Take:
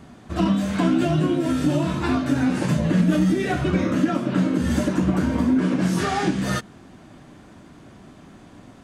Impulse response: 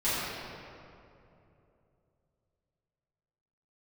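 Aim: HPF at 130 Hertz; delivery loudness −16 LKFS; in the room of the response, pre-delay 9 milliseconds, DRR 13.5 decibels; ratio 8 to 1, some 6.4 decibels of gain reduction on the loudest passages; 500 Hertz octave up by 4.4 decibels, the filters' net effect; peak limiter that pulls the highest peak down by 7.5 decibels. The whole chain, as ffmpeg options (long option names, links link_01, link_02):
-filter_complex "[0:a]highpass=130,equalizer=frequency=500:width_type=o:gain=6.5,acompressor=threshold=-20dB:ratio=8,alimiter=limit=-19dB:level=0:latency=1,asplit=2[link_01][link_02];[1:a]atrim=start_sample=2205,adelay=9[link_03];[link_02][link_03]afir=irnorm=-1:irlink=0,volume=-25.5dB[link_04];[link_01][link_04]amix=inputs=2:normalize=0,volume=11.5dB"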